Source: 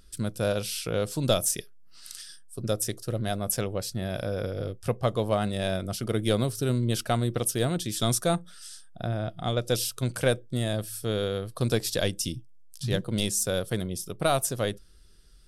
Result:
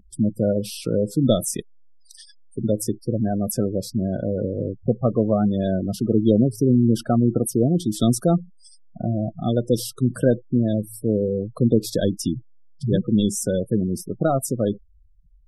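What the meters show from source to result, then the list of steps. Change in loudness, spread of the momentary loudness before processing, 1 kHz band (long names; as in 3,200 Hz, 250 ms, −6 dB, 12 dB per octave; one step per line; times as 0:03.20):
+6.0 dB, 8 LU, +0.5 dB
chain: gate on every frequency bin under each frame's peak −15 dB strong
parametric band 250 Hz +13.5 dB 1.7 octaves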